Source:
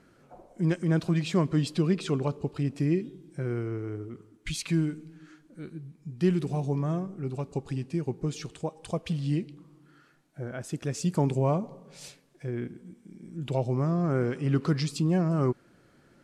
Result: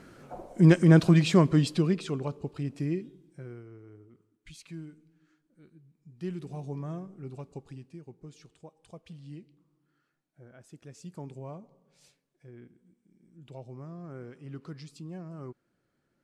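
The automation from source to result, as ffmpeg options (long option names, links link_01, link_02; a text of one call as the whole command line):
ffmpeg -i in.wav -af "volume=16dB,afade=type=out:start_time=0.81:duration=1.29:silence=0.237137,afade=type=out:start_time=2.86:duration=0.78:silence=0.266073,afade=type=in:start_time=5.84:duration=0.94:silence=0.398107,afade=type=out:start_time=7.34:duration=0.66:silence=0.375837" out.wav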